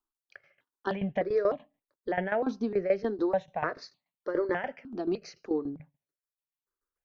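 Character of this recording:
tremolo saw down 6.9 Hz, depth 80%
notches that jump at a steady rate 3.3 Hz 540–1,500 Hz

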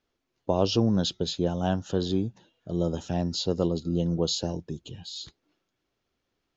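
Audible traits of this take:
background noise floor −81 dBFS
spectral slope −5.0 dB per octave

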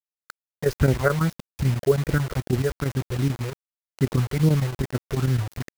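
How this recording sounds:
phaser sweep stages 6, 2.5 Hz, lowest notch 220–1,200 Hz
a quantiser's noise floor 6 bits, dither none
chopped level 9.1 Hz, depth 60%, duty 85%

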